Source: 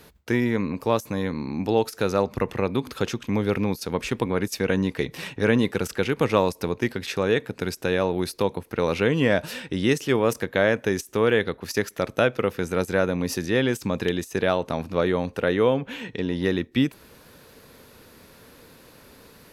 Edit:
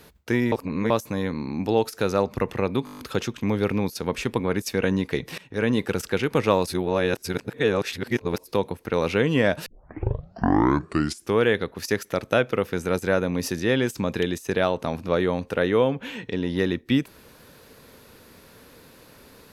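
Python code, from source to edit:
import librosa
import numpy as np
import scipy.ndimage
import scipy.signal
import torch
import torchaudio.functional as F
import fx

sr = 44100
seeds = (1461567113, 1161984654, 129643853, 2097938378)

y = fx.edit(x, sr, fx.reverse_span(start_s=0.52, length_s=0.38),
    fx.stutter(start_s=2.85, slice_s=0.02, count=8),
    fx.fade_in_from(start_s=5.24, length_s=0.59, curve='qsin', floor_db=-19.5),
    fx.reverse_span(start_s=6.53, length_s=1.79),
    fx.tape_start(start_s=9.52, length_s=1.73), tone=tone)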